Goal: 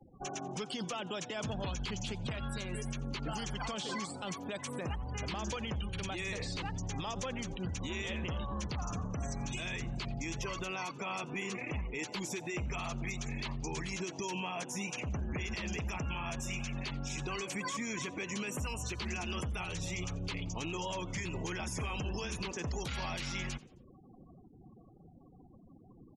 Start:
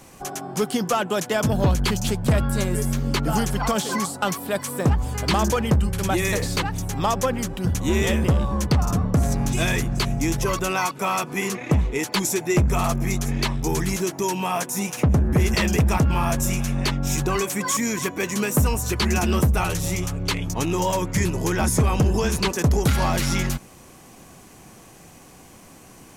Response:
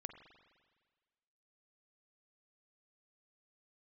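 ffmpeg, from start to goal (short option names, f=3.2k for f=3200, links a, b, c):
-filter_complex "[0:a]aemphasis=mode=reproduction:type=50kf,afftfilt=real='re*gte(hypot(re,im),0.0126)':imag='im*gte(hypot(re,im),0.0126)':win_size=1024:overlap=0.75,highshelf=f=2.1k:t=q:w=1.5:g=7.5,acrossover=split=870|2100|6700[a][b][c][d];[a]acompressor=threshold=-28dB:ratio=4[e];[b]acompressor=threshold=-30dB:ratio=4[f];[c]acompressor=threshold=-33dB:ratio=4[g];[d]acompressor=threshold=-43dB:ratio=4[h];[e][f][g][h]amix=inputs=4:normalize=0,alimiter=limit=-22dB:level=0:latency=1:release=51,asplit=4[i][j][k][l];[j]adelay=88,afreqshift=110,volume=-21dB[m];[k]adelay=176,afreqshift=220,volume=-28.7dB[n];[l]adelay=264,afreqshift=330,volume=-36.5dB[o];[i][m][n][o]amix=inputs=4:normalize=0,volume=-7dB"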